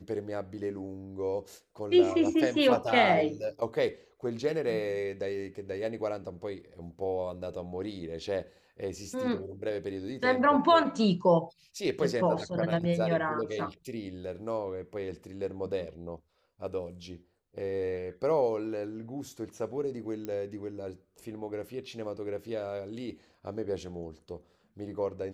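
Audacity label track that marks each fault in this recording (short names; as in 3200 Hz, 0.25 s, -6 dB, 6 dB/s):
20.250000	20.250000	pop -24 dBFS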